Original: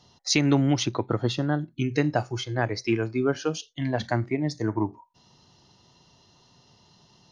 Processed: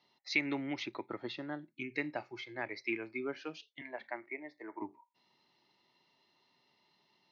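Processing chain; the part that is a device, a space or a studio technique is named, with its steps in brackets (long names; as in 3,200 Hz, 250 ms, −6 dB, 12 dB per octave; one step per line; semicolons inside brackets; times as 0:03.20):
0:03.81–0:04.82: three-way crossover with the lows and the highs turned down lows −21 dB, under 340 Hz, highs −18 dB, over 2,500 Hz
phone earpiece (loudspeaker in its box 420–3,800 Hz, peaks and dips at 480 Hz −9 dB, 710 Hz −8 dB, 1,100 Hz −6 dB, 1,500 Hz −7 dB, 2,200 Hz +9 dB, 3,100 Hz −8 dB)
level −6.5 dB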